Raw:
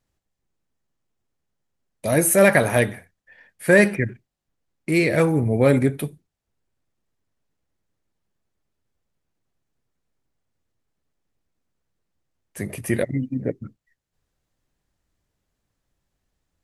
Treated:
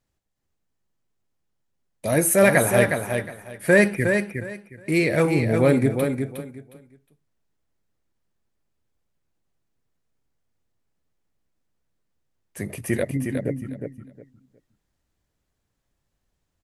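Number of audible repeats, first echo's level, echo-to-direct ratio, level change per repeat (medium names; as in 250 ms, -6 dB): 3, -6.0 dB, -6.0 dB, -13.5 dB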